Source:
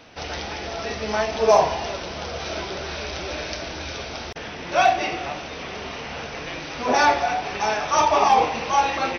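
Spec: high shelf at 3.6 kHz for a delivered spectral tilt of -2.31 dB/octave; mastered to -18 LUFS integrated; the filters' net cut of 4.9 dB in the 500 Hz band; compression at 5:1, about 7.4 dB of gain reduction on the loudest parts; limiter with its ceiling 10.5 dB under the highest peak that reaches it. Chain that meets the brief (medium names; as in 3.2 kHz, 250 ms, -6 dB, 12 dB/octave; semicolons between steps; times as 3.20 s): peaking EQ 500 Hz -7 dB; treble shelf 3.6 kHz +6.5 dB; compression 5:1, threshold -22 dBFS; trim +12 dB; peak limiter -9 dBFS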